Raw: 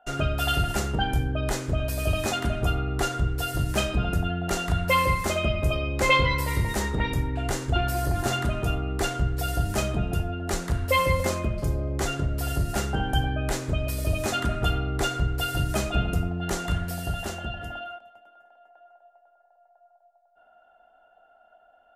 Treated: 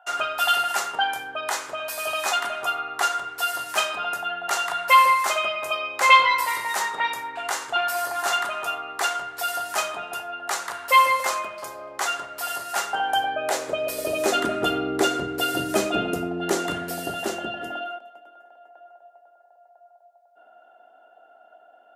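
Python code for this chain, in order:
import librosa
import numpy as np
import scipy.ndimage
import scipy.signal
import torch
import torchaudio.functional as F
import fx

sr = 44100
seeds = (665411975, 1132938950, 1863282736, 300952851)

y = fx.filter_sweep_highpass(x, sr, from_hz=970.0, to_hz=320.0, start_s=12.75, end_s=14.63, q=1.8)
y = F.gain(torch.from_numpy(y), 4.0).numpy()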